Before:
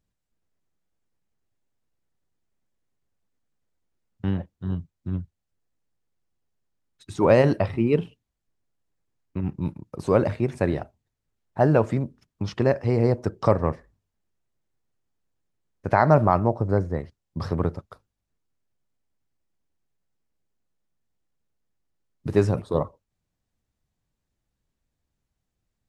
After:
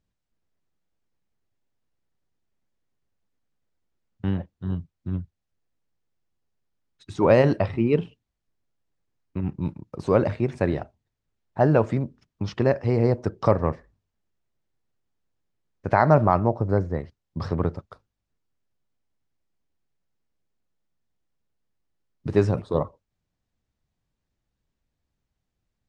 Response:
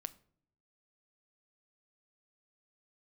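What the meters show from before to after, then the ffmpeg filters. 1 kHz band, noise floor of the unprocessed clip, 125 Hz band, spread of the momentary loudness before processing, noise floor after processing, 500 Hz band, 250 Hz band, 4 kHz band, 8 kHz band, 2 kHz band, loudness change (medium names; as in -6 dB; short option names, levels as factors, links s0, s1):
0.0 dB, -82 dBFS, 0.0 dB, 17 LU, -82 dBFS, 0.0 dB, 0.0 dB, -0.5 dB, no reading, 0.0 dB, 0.0 dB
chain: -af "lowpass=6400"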